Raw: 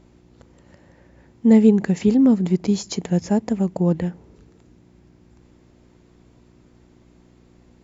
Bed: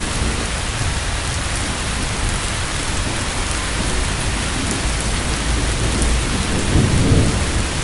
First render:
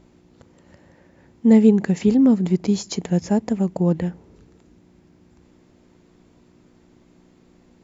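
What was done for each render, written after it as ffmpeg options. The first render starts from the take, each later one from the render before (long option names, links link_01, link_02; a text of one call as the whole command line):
ffmpeg -i in.wav -af "bandreject=frequency=60:width_type=h:width=4,bandreject=frequency=120:width_type=h:width=4" out.wav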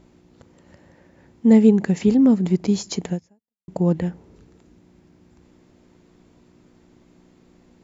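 ffmpeg -i in.wav -filter_complex "[0:a]asplit=2[link_01][link_02];[link_01]atrim=end=3.68,asetpts=PTS-STARTPTS,afade=type=out:start_time=3.11:duration=0.57:curve=exp[link_03];[link_02]atrim=start=3.68,asetpts=PTS-STARTPTS,afade=type=in:duration=0.004:curve=hsin[link_04];[link_03][link_04]concat=n=2:v=0:a=1" out.wav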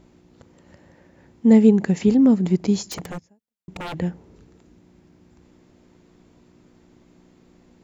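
ffmpeg -i in.wav -filter_complex "[0:a]asettb=1/sr,asplit=3[link_01][link_02][link_03];[link_01]atrim=end=2.854[link_04];[link_02]atrim=start=2.85:end=3.98,asetpts=PTS-STARTPTS,afade=type=in:duration=0.004:curve=qsin,afade=type=out:start_time=1.126:duration=0.004:curve=qsin,aeval=exprs='0.0501*(abs(mod(val(0)/0.0501+3,4)-2)-1)':channel_layout=same[link_05];[link_03]atrim=start=3.976[link_06];[link_04][link_05]acrossfade=duration=0.004:curve1=hsin:curve2=qsin[link_07];[link_07][link_06]acrossfade=duration=0.004:curve1=qsin:curve2=hsin" out.wav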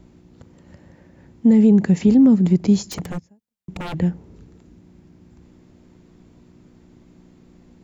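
ffmpeg -i in.wav -filter_complex "[0:a]acrossover=split=260|990[link_01][link_02][link_03];[link_01]acontrast=69[link_04];[link_04][link_02][link_03]amix=inputs=3:normalize=0,alimiter=limit=-7dB:level=0:latency=1:release=14" out.wav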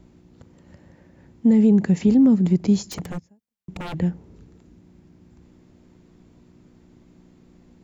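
ffmpeg -i in.wav -af "volume=-2.5dB" out.wav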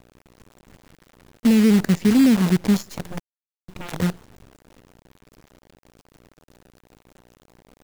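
ffmpeg -i in.wav -af "acrusher=bits=5:dc=4:mix=0:aa=0.000001" out.wav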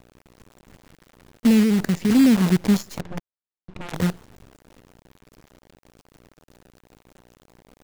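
ffmpeg -i in.wav -filter_complex "[0:a]asettb=1/sr,asplit=3[link_01][link_02][link_03];[link_01]atrim=end=1.634[link_04];[link_02]atrim=start=1.63:end=2.1,asetpts=PTS-STARTPTS,afade=type=in:duration=0.004:curve=qsin,afade=type=out:start_time=0.466:duration=0.004:curve=qsin,acompressor=threshold=-17dB:ratio=2.5:attack=3.2:release=140:knee=1:detection=peak[link_05];[link_03]atrim=start=2.096[link_06];[link_04][link_05]acrossfade=duration=0.004:curve1=hsin:curve2=qsin[link_07];[link_07][link_06]acrossfade=duration=0.004:curve1=qsin:curve2=hsin,asettb=1/sr,asplit=3[link_08][link_09][link_10];[link_08]atrim=end=3.004[link_11];[link_09]atrim=start=3:end=3.94,asetpts=PTS-STARTPTS,afade=type=in:duration=0.004:curve=qsin,afade=type=out:start_time=0.936:duration=0.004:curve=qsin,adynamicsmooth=sensitivity=7:basefreq=2300[link_12];[link_10]atrim=start=3.936[link_13];[link_11][link_12]acrossfade=duration=0.004:curve1=hsin:curve2=qsin[link_14];[link_14][link_13]acrossfade=duration=0.004:curve1=qsin:curve2=hsin" out.wav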